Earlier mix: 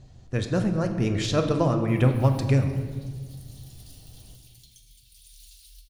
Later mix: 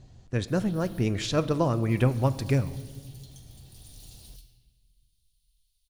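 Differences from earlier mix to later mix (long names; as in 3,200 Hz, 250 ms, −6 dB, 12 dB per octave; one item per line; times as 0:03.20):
speech: send −10.0 dB
background: entry −1.40 s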